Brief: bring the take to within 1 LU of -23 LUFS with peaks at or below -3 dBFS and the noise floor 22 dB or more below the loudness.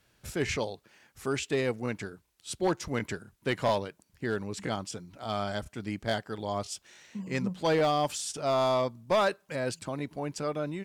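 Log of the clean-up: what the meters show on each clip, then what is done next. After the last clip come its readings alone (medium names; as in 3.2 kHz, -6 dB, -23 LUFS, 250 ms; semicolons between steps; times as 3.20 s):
clipped samples 0.7%; clipping level -20.0 dBFS; loudness -31.5 LUFS; peak level -20.0 dBFS; loudness target -23.0 LUFS
-> clip repair -20 dBFS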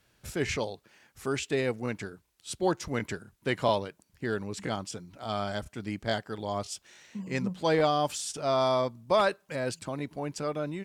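clipped samples 0.0%; loudness -31.0 LUFS; peak level -12.5 dBFS; loudness target -23.0 LUFS
-> trim +8 dB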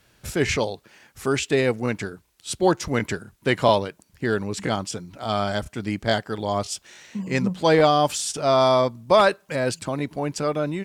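loudness -23.0 LUFS; peak level -4.5 dBFS; noise floor -61 dBFS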